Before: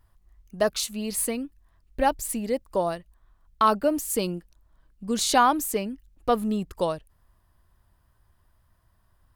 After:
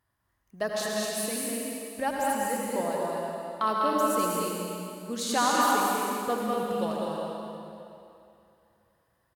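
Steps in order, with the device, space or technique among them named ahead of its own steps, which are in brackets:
stadium PA (high-pass filter 130 Hz 12 dB per octave; parametric band 1,800 Hz +5 dB 0.37 octaves; loudspeakers that aren't time-aligned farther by 69 metres −4 dB, 84 metres −5 dB; convolution reverb RT60 2.7 s, pre-delay 71 ms, DRR −1.5 dB)
level −8 dB

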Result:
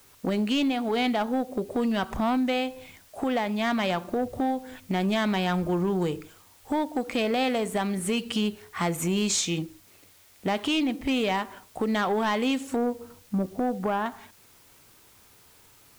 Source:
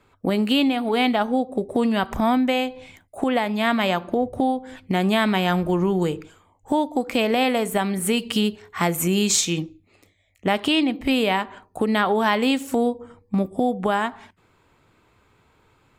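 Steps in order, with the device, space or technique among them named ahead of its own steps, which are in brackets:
0:12.76–0:14.06: low-pass filter 1,600 Hz
compact cassette (soft clipping −15.5 dBFS, distortion −16 dB; low-pass filter 9,300 Hz; tape wow and flutter 18 cents; white noise bed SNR 29 dB)
level −3 dB

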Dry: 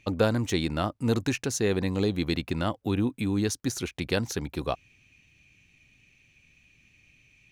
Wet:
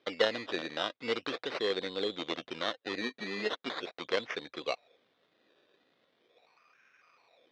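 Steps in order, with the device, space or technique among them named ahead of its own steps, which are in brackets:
0:03.01–0:03.81: comb filter 4.8 ms, depth 74%
circuit-bent sampling toy (sample-and-hold swept by an LFO 16×, swing 60% 0.4 Hz; loudspeaker in its box 480–4,800 Hz, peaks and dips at 490 Hz +5 dB, 890 Hz −6 dB, 2,000 Hz +3 dB, 3,600 Hz +10 dB)
level −3.5 dB

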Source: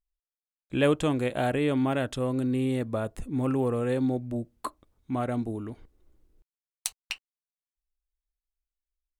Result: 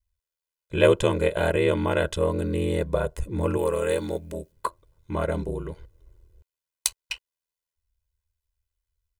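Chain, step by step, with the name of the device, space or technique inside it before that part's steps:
0:03.57–0:04.52: spectral tilt +2.5 dB per octave
ring-modulated robot voice (ring modulation 41 Hz; comb filter 2 ms, depth 79%)
level +5.5 dB

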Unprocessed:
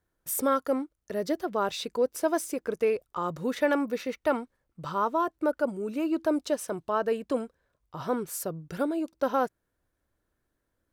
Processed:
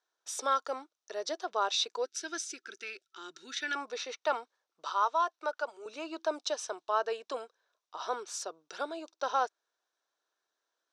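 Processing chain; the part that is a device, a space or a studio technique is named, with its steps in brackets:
phone speaker on a table (loudspeaker in its box 490–7,100 Hz, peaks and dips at 540 Hz −8 dB, 2,000 Hz −6 dB, 3,800 Hz +7 dB, 5,800 Hz +8 dB)
0:02.05–0:03.76: gain on a spectral selection 400–1,300 Hz −20 dB
0:04.90–0:05.86: meter weighting curve A

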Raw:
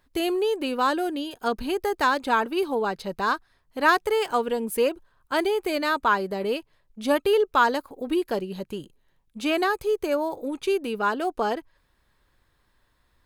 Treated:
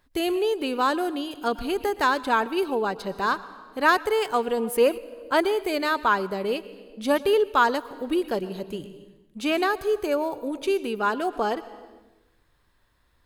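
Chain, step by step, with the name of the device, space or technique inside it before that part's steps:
compressed reverb return (on a send at −9 dB: convolution reverb RT60 0.95 s, pre-delay 109 ms + downward compressor 6 to 1, threshold −29 dBFS, peak gain reduction 12.5 dB)
0:04.57–0:05.42: on the sum: parametric band 760 Hz +4 dB 2.5 octaves

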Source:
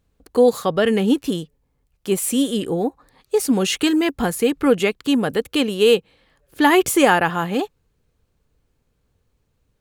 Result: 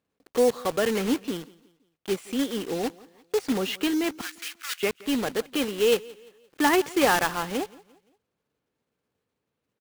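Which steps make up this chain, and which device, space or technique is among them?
early digital voice recorder (band-pass filter 210–3,500 Hz; one scale factor per block 3 bits)
0:04.21–0:04.83: high-pass filter 1,500 Hz 24 dB per octave
repeating echo 173 ms, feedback 40%, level −22 dB
level −6.5 dB

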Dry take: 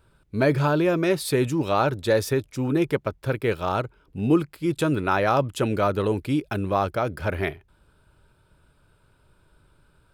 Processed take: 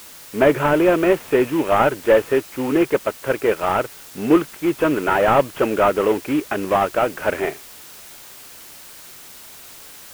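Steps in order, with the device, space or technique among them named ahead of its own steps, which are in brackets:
army field radio (band-pass filter 320–2,900 Hz; variable-slope delta modulation 16 kbit/s; white noise bed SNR 21 dB)
level +8.5 dB

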